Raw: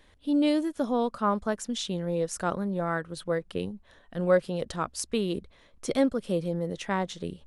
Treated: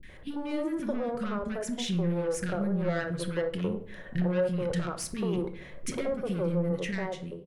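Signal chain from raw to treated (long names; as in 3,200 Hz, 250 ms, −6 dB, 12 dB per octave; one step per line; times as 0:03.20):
fade-out on the ending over 1.21 s
in parallel at +2 dB: brickwall limiter −19 dBFS, peak gain reduction 7.5 dB
on the sum: downward compressor 4 to 1, threshold −29 dBFS, peak gain reduction 13.5 dB
octave-band graphic EQ 125/500/1,000/2,000/4,000/8,000 Hz +6/+5/−5/+9/−7/−5 dB
soft clipping −25.5 dBFS, distortion −13 dB
three-band delay without the direct sound lows, highs, mids 30/90 ms, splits 300/1,400 Hz
rectangular room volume 820 cubic metres, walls furnished, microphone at 1 metre
level +1.5 dB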